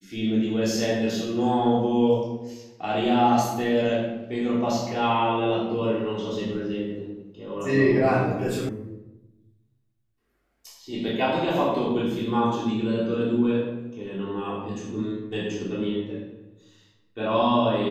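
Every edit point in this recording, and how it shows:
8.69 sound cut off

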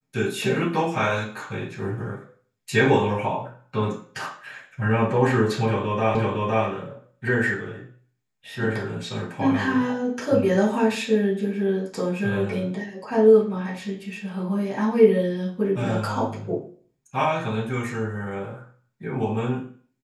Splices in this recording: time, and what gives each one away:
6.15 repeat of the last 0.51 s

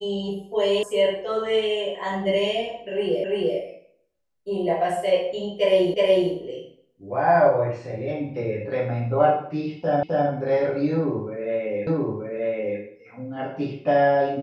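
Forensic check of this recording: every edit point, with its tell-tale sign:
0.83 sound cut off
3.24 repeat of the last 0.34 s
5.94 repeat of the last 0.37 s
10.03 repeat of the last 0.26 s
11.87 repeat of the last 0.93 s

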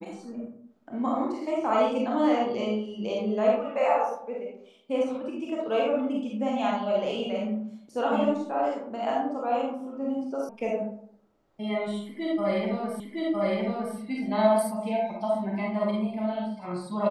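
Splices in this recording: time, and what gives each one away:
10.49 sound cut off
13 repeat of the last 0.96 s

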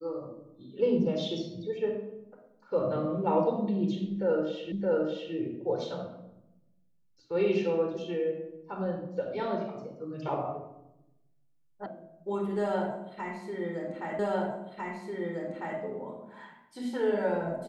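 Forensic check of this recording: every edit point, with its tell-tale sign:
4.72 repeat of the last 0.62 s
11.86 sound cut off
14.19 repeat of the last 1.6 s

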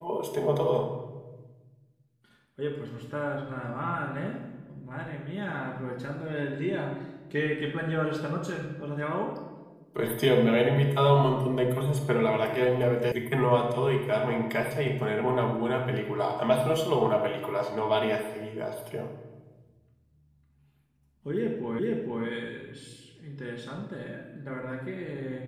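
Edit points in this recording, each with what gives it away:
13.12 sound cut off
21.79 repeat of the last 0.46 s

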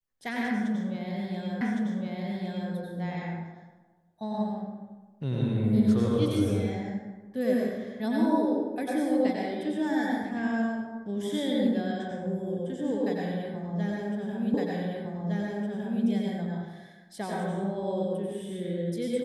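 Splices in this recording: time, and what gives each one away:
1.61 repeat of the last 1.11 s
14.54 repeat of the last 1.51 s

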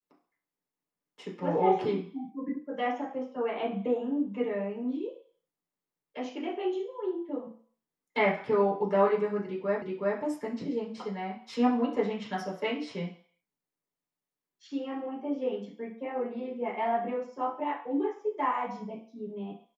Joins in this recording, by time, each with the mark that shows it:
9.82 repeat of the last 0.37 s

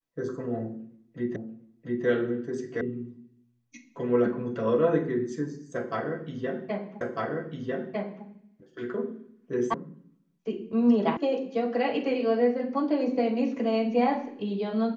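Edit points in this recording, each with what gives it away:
1.36 repeat of the last 0.69 s
2.81 sound cut off
7.01 repeat of the last 1.25 s
9.74 sound cut off
11.17 sound cut off

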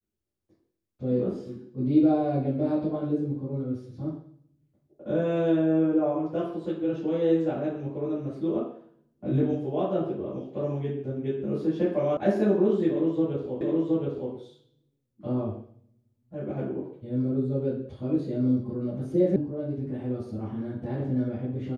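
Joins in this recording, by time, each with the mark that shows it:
12.17 sound cut off
13.61 repeat of the last 0.72 s
19.36 sound cut off

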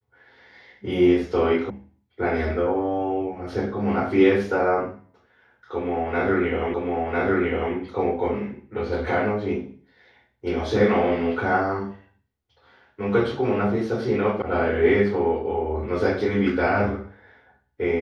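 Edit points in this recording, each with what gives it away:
1.7 sound cut off
6.74 repeat of the last 1 s
14.42 sound cut off

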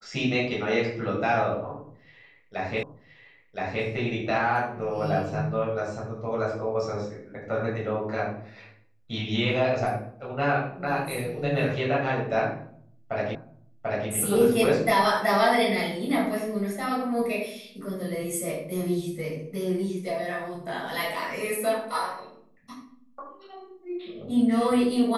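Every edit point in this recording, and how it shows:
2.83 repeat of the last 1.02 s
13.35 repeat of the last 0.74 s

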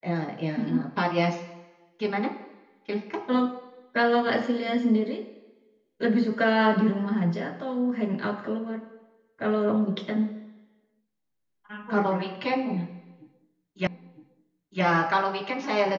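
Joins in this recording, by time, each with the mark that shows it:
13.87 repeat of the last 0.96 s

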